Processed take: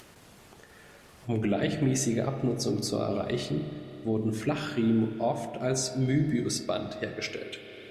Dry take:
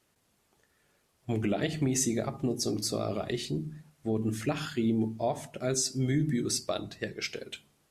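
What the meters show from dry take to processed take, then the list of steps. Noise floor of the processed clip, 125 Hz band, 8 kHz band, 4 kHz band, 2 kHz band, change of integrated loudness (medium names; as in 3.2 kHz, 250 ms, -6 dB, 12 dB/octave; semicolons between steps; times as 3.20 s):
-54 dBFS, +2.5 dB, -2.0 dB, -0.5 dB, +2.0 dB, +1.5 dB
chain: treble shelf 6.7 kHz -7 dB; spring tank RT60 2.6 s, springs 30/44 ms, chirp 35 ms, DRR 6.5 dB; upward compressor, threshold -39 dBFS; trim +1.5 dB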